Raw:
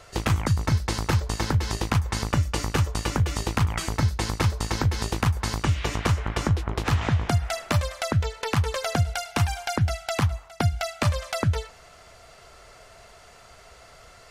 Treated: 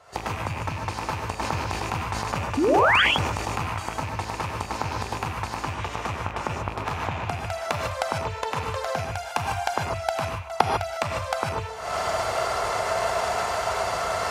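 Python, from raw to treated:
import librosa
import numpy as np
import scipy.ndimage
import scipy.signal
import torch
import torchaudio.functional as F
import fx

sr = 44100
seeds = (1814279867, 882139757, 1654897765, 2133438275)

y = fx.rattle_buzz(x, sr, strikes_db=-25.0, level_db=-17.0)
y = fx.recorder_agc(y, sr, target_db=-12.5, rise_db_per_s=71.0, max_gain_db=30)
y = scipy.signal.sosfilt(scipy.signal.butter(2, 64.0, 'highpass', fs=sr, output='sos'), y)
y = fx.peak_eq(y, sr, hz=870.0, db=11.5, octaves=1.4)
y = fx.spec_paint(y, sr, seeds[0], shape='rise', start_s=2.57, length_s=0.45, low_hz=250.0, high_hz=3500.0, level_db=-8.0)
y = fx.rev_gated(y, sr, seeds[1], gate_ms=170, shape='rising', drr_db=1.0)
y = fx.sustainer(y, sr, db_per_s=31.0, at=(1.38, 3.71))
y = y * 10.0 ** (-12.5 / 20.0)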